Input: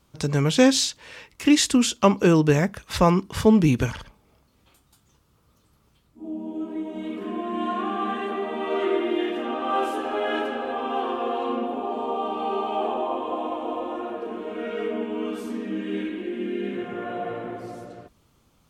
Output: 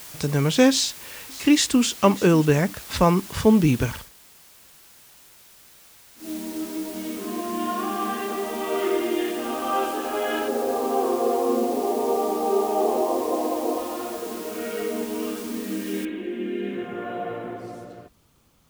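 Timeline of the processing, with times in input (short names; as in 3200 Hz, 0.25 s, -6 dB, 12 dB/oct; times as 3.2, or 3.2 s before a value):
0.7–1.86 echo throw 0.59 s, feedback 25%, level -18 dB
3.96–6.3 dip -10 dB, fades 0.13 s
10.48–13.78 EQ curve 170 Hz 0 dB, 420 Hz +8 dB, 7600 Hz -22 dB
16.05 noise floor step -41 dB -69 dB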